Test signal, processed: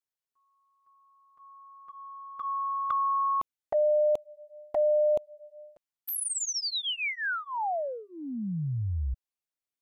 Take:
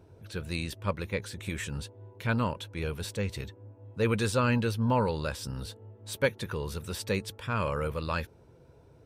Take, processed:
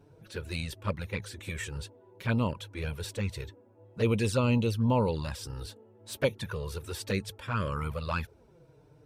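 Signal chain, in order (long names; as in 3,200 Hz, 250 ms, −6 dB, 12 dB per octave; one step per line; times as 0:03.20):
flanger swept by the level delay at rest 7.4 ms, full sweep at −23 dBFS
level +1.5 dB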